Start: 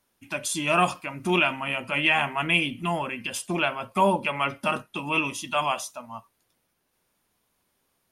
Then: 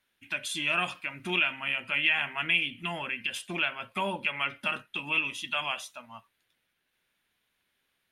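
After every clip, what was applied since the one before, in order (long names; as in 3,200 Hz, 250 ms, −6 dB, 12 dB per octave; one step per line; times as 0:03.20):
flat-topped bell 2,400 Hz +11 dB
downward compressor 1.5 to 1, threshold −22 dBFS, peak gain reduction 6 dB
level −8.5 dB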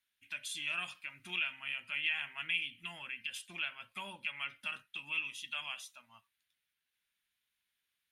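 guitar amp tone stack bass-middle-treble 5-5-5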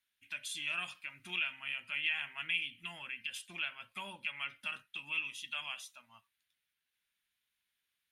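no processing that can be heard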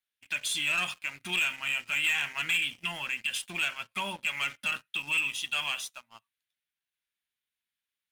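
leveller curve on the samples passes 3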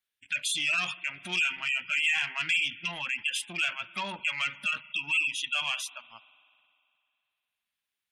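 spring reverb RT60 2.5 s, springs 50 ms, chirp 25 ms, DRR 18 dB
gate on every frequency bin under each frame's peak −20 dB strong
saturating transformer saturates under 2,300 Hz
level +2 dB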